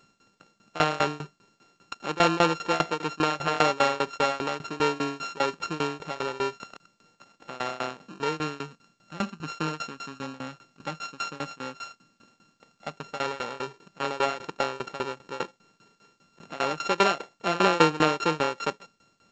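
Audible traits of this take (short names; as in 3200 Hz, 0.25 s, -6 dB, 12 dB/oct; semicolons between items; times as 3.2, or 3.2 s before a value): a buzz of ramps at a fixed pitch in blocks of 32 samples; tremolo saw down 5 Hz, depth 95%; G.722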